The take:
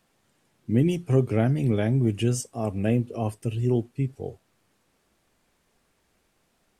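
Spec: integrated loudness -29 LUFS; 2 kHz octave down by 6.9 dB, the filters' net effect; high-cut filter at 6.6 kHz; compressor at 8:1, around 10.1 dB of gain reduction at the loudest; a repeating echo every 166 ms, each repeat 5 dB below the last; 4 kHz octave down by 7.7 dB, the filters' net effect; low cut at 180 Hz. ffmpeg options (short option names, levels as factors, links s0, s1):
-af "highpass=180,lowpass=6600,equalizer=f=2000:t=o:g=-7,equalizer=f=4000:t=o:g=-8,acompressor=threshold=0.0398:ratio=8,aecho=1:1:166|332|498|664|830|996|1162:0.562|0.315|0.176|0.0988|0.0553|0.031|0.0173,volume=1.68"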